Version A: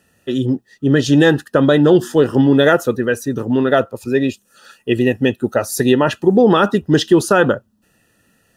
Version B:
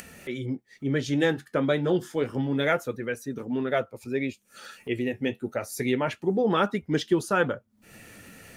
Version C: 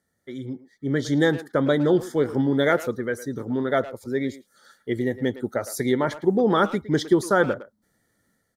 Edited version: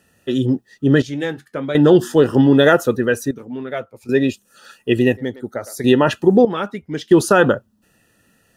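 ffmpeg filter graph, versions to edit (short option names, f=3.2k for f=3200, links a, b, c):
-filter_complex "[1:a]asplit=3[a][b][c];[0:a]asplit=5[d][e][f][g][h];[d]atrim=end=1.022[i];[a]atrim=start=1.018:end=1.752[j];[e]atrim=start=1.748:end=3.312[k];[b]atrim=start=3.308:end=4.092[l];[f]atrim=start=4.088:end=5.172[m];[2:a]atrim=start=5.168:end=5.842[n];[g]atrim=start=5.838:end=6.452[o];[c]atrim=start=6.448:end=7.112[p];[h]atrim=start=7.108[q];[i][j]acrossfade=d=0.004:c1=hsin:c2=hsin[r];[r][k]acrossfade=d=0.004:c1=hsin:c2=hsin[s];[s][l]acrossfade=d=0.004:c1=hsin:c2=hsin[t];[t][m]acrossfade=d=0.004:c1=hsin:c2=hsin[u];[u][n]acrossfade=d=0.004:c1=hsin:c2=hsin[v];[v][o]acrossfade=d=0.004:c1=hsin:c2=hsin[w];[w][p]acrossfade=d=0.004:c1=hsin:c2=hsin[x];[x][q]acrossfade=d=0.004:c1=hsin:c2=hsin"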